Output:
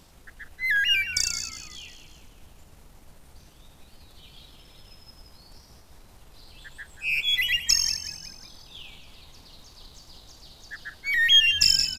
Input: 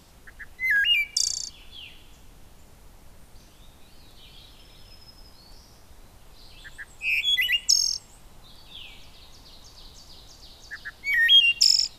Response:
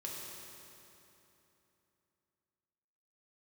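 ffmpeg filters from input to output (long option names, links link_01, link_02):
-filter_complex "[0:a]aeval=exprs='if(lt(val(0),0),0.708*val(0),val(0))':channel_layout=same,asplit=6[link_01][link_02][link_03][link_04][link_05][link_06];[link_02]adelay=182,afreqshift=-82,volume=-12dB[link_07];[link_03]adelay=364,afreqshift=-164,volume=-18dB[link_08];[link_04]adelay=546,afreqshift=-246,volume=-24dB[link_09];[link_05]adelay=728,afreqshift=-328,volume=-30.1dB[link_10];[link_06]adelay=910,afreqshift=-410,volume=-36.1dB[link_11];[link_01][link_07][link_08][link_09][link_10][link_11]amix=inputs=6:normalize=0"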